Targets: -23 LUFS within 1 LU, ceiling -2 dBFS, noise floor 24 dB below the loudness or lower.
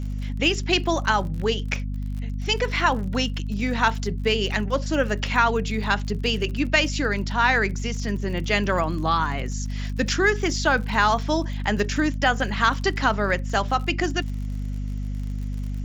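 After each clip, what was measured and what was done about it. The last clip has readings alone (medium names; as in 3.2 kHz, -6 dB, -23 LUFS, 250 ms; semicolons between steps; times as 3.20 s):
tick rate 50 per s; hum 50 Hz; highest harmonic 250 Hz; hum level -26 dBFS; loudness -23.5 LUFS; peak level -4.5 dBFS; loudness target -23.0 LUFS
-> de-click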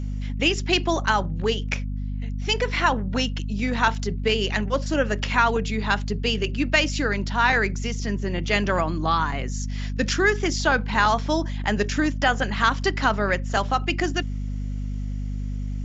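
tick rate 0.063 per s; hum 50 Hz; highest harmonic 250 Hz; hum level -26 dBFS
-> hum notches 50/100/150/200/250 Hz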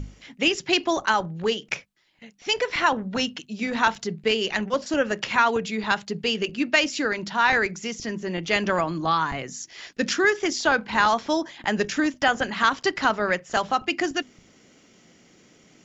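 hum not found; loudness -24.0 LUFS; peak level -4.5 dBFS; loudness target -23.0 LUFS
-> trim +1 dB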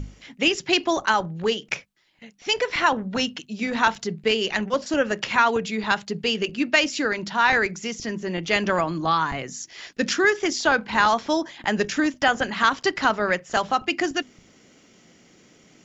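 loudness -23.0 LUFS; peak level -3.5 dBFS; noise floor -56 dBFS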